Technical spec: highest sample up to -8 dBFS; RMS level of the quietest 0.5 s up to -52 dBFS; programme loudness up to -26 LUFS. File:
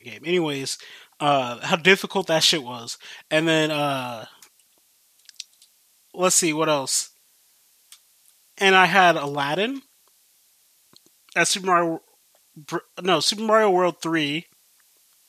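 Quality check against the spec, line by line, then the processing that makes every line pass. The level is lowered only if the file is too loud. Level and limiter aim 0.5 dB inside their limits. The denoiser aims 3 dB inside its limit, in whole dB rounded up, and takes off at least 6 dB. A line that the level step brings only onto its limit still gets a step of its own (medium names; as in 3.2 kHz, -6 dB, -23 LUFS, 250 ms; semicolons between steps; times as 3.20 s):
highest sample -2.0 dBFS: fail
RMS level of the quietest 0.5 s -61 dBFS: pass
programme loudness -20.5 LUFS: fail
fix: trim -6 dB; peak limiter -8.5 dBFS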